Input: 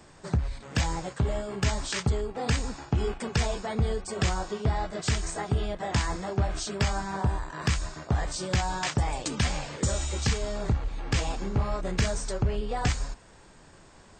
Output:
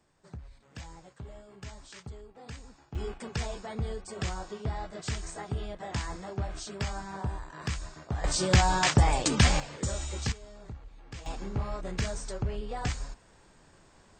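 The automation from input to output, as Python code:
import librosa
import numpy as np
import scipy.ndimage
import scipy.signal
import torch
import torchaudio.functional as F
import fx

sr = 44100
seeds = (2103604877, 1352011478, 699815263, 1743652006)

y = fx.gain(x, sr, db=fx.steps((0.0, -17.5), (2.95, -7.0), (8.24, 5.0), (9.6, -5.0), (10.32, -17.0), (11.26, -5.5)))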